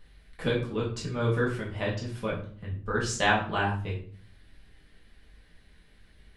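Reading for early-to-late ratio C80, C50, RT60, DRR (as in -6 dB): 11.5 dB, 7.5 dB, 0.45 s, -5.5 dB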